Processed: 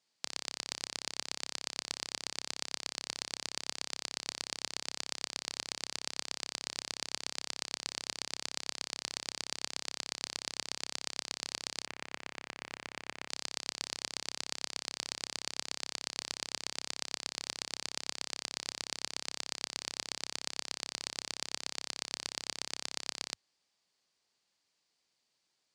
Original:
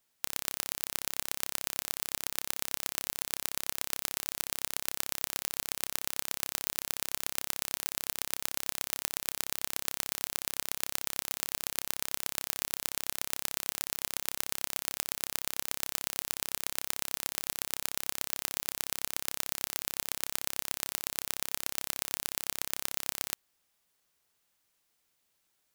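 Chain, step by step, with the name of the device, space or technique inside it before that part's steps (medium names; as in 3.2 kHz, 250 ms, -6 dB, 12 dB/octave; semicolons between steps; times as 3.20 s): car door speaker (cabinet simulation 81–7800 Hz, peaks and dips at 93 Hz -7 dB, 1.4 kHz -4 dB, 4.6 kHz +8 dB); 11.86–13.29 s: resonant high shelf 3.2 kHz -10.5 dB, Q 1.5; trim -2.5 dB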